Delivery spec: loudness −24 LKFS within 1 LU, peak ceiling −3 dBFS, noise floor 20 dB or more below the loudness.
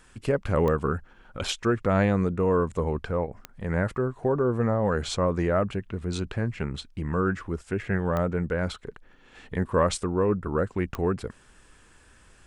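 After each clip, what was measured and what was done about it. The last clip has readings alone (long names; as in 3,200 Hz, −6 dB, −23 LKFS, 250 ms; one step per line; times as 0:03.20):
number of clicks 4; integrated loudness −27.0 LKFS; sample peak −11.0 dBFS; target loudness −24.0 LKFS
→ click removal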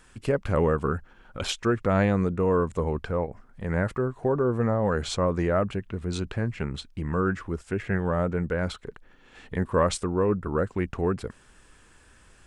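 number of clicks 0; integrated loudness −27.0 LKFS; sample peak −11.0 dBFS; target loudness −24.0 LKFS
→ level +3 dB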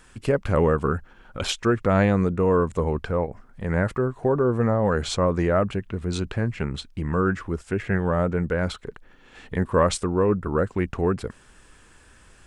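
integrated loudness −24.0 LKFS; sample peak −8.0 dBFS; background noise floor −53 dBFS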